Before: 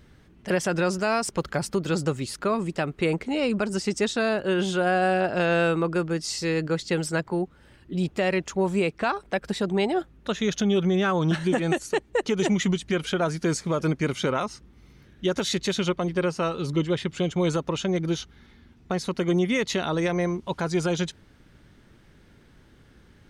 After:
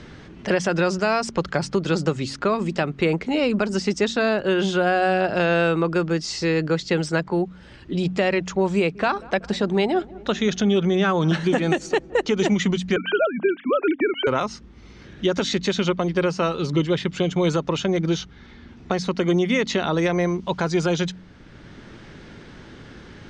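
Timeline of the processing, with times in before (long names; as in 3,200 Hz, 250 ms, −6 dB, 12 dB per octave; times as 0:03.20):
0:08.76–0:12.34: feedback echo with a low-pass in the loop 189 ms, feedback 65%, low-pass 1,200 Hz, level −21.5 dB
0:12.96–0:14.27: three sine waves on the formant tracks
whole clip: low-pass filter 6,700 Hz 24 dB per octave; hum removal 45.72 Hz, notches 6; multiband upward and downward compressor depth 40%; level +3.5 dB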